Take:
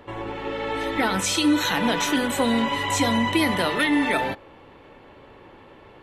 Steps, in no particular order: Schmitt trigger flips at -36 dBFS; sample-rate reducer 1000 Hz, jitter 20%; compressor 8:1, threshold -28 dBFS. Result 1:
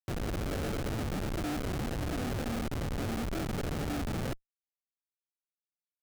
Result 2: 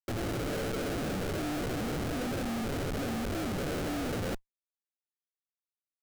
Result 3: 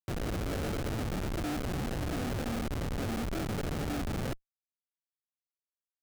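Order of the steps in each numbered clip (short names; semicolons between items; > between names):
compressor > sample-rate reducer > Schmitt trigger; compressor > Schmitt trigger > sample-rate reducer; sample-rate reducer > compressor > Schmitt trigger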